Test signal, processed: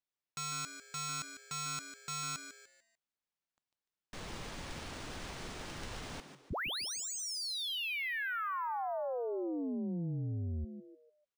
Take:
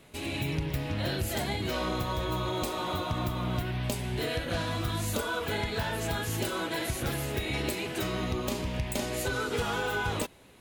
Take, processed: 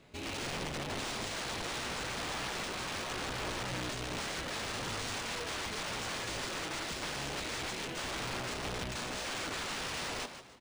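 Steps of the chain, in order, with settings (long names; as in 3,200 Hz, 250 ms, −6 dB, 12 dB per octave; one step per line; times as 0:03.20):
wrap-around overflow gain 28.5 dB
echo with shifted repeats 148 ms, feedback 35%, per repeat +130 Hz, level −10 dB
linearly interpolated sample-rate reduction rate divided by 3×
level −4 dB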